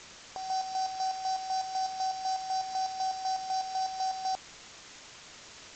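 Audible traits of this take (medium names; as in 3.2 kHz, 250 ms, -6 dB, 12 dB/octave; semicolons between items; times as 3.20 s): a buzz of ramps at a fixed pitch in blocks of 8 samples; chopped level 4 Hz, depth 60%, duty 45%; a quantiser's noise floor 8-bit, dither triangular; G.722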